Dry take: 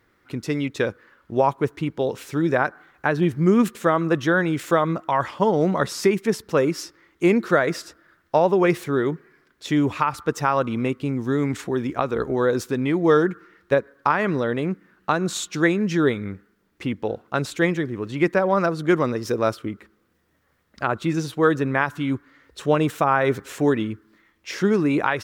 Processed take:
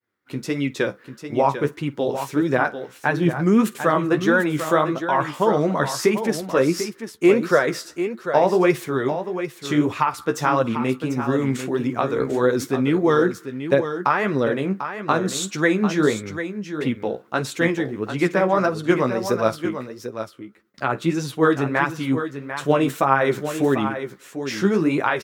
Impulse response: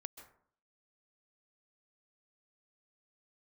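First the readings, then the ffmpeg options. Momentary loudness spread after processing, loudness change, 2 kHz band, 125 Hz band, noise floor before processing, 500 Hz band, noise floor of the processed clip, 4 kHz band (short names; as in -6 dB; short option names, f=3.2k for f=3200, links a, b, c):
10 LU, +1.0 dB, +1.5 dB, 0.0 dB, -66 dBFS, +1.0 dB, -47 dBFS, +2.0 dB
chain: -filter_complex "[0:a]highpass=120,highshelf=f=7.4k:g=4,agate=range=-33dB:threshold=-52dB:ratio=3:detection=peak,flanger=delay=7.5:depth=8.2:regen=29:speed=1.6:shape=sinusoidal,asplit=2[a][b];[b]aecho=0:1:51|745:0.1|0.335[c];[a][c]amix=inputs=2:normalize=0,volume=4.5dB"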